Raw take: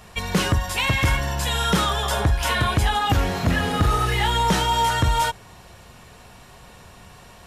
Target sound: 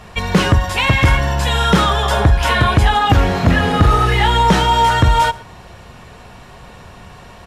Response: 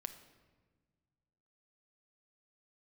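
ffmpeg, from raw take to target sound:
-filter_complex "[0:a]lowpass=frequency=3200:poles=1,asplit=2[link_01][link_02];[link_02]aecho=0:1:118:0.0794[link_03];[link_01][link_03]amix=inputs=2:normalize=0,volume=8dB"

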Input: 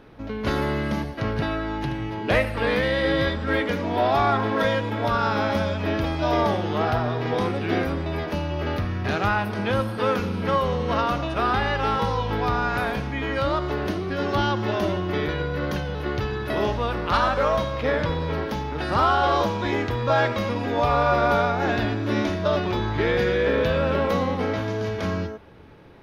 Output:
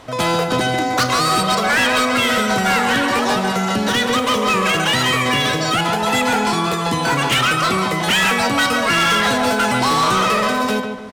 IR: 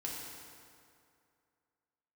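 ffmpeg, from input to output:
-filter_complex "[0:a]asplit=2[link_01][link_02];[link_02]adelay=343,lowpass=frequency=890:poles=1,volume=-6dB,asplit=2[link_03][link_04];[link_04]adelay=343,lowpass=frequency=890:poles=1,volume=0.39,asplit=2[link_05][link_06];[link_06]adelay=343,lowpass=frequency=890:poles=1,volume=0.39,asplit=2[link_07][link_08];[link_08]adelay=343,lowpass=frequency=890:poles=1,volume=0.39,asplit=2[link_09][link_10];[link_10]adelay=343,lowpass=frequency=890:poles=1,volume=0.39[link_11];[link_01][link_03][link_05][link_07][link_09][link_11]amix=inputs=6:normalize=0,asoftclip=type=hard:threshold=-19.5dB,asetrate=103194,aresample=44100,volume=7dB"

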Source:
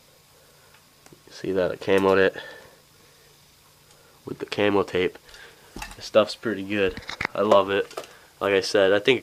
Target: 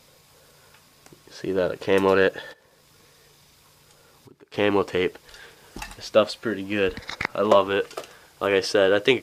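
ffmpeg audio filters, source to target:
ffmpeg -i in.wav -filter_complex "[0:a]asplit=3[link_01][link_02][link_03];[link_01]afade=type=out:start_time=2.52:duration=0.02[link_04];[link_02]acompressor=threshold=-50dB:ratio=5,afade=type=in:start_time=2.52:duration=0.02,afade=type=out:start_time=4.53:duration=0.02[link_05];[link_03]afade=type=in:start_time=4.53:duration=0.02[link_06];[link_04][link_05][link_06]amix=inputs=3:normalize=0" out.wav

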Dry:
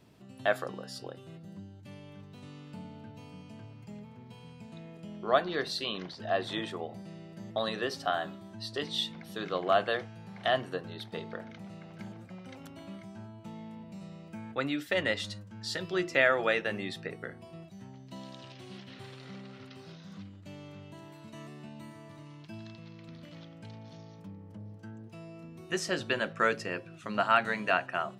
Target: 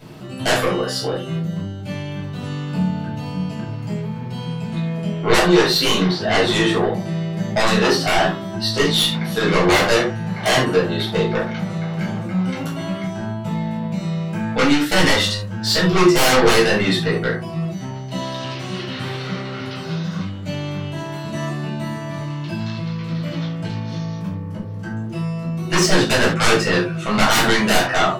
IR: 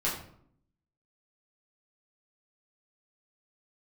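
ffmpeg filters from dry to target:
-filter_complex "[0:a]aeval=exprs='0.335*sin(PI/2*8.91*val(0)/0.335)':channel_layout=same[link_01];[1:a]atrim=start_sample=2205,atrim=end_sample=4410[link_02];[link_01][link_02]afir=irnorm=-1:irlink=0,volume=-9dB"

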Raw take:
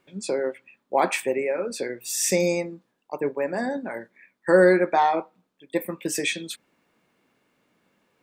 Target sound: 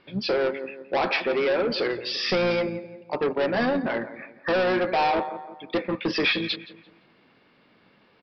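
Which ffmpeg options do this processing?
ffmpeg -i in.wav -filter_complex "[0:a]alimiter=limit=-13dB:level=0:latency=1:release=492,asplit=2[link_01][link_02];[link_02]adelay=171,lowpass=frequency=2500:poles=1,volume=-16dB,asplit=2[link_03][link_04];[link_04]adelay=171,lowpass=frequency=2500:poles=1,volume=0.41,asplit=2[link_05][link_06];[link_06]adelay=171,lowpass=frequency=2500:poles=1,volume=0.41,asplit=2[link_07][link_08];[link_08]adelay=171,lowpass=frequency=2500:poles=1,volume=0.41[link_09];[link_01][link_03][link_05][link_07][link_09]amix=inputs=5:normalize=0,aresample=11025,asoftclip=type=tanh:threshold=-27.5dB,aresample=44100,highshelf=frequency=2600:gain=4,asplit=2[link_10][link_11];[link_11]asetrate=29433,aresample=44100,atempo=1.49831,volume=-12dB[link_12];[link_10][link_12]amix=inputs=2:normalize=0,volume=7.5dB" out.wav

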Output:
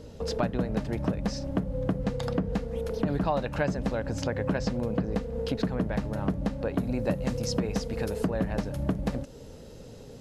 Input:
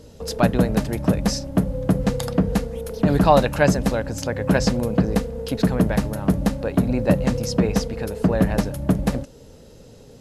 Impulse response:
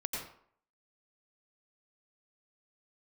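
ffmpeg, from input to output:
-filter_complex "[0:a]acrossover=split=7600[link_01][link_02];[link_02]acompressor=threshold=-46dB:ratio=4:attack=1:release=60[link_03];[link_01][link_03]amix=inputs=2:normalize=0,asetnsamples=nb_out_samples=441:pad=0,asendcmd='6.78 highshelf g 3;8.3 highshelf g -4',highshelf=frequency=6200:gain=-10.5,acompressor=threshold=-26dB:ratio=4"

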